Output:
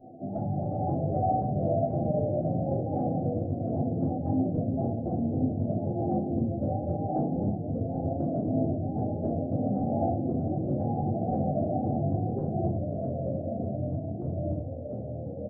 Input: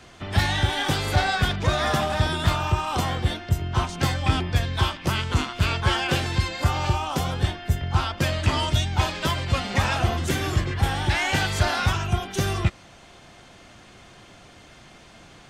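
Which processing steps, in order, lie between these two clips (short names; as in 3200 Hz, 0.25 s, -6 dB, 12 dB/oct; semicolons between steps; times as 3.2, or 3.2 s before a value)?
FFT band-pass 100–840 Hz; compressor, threshold -30 dBFS, peak gain reduction 11.5 dB; doubler 12 ms -6.5 dB; shoebox room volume 260 m³, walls furnished, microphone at 2.8 m; echoes that change speed 0.317 s, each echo -2 st, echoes 2; gain -3.5 dB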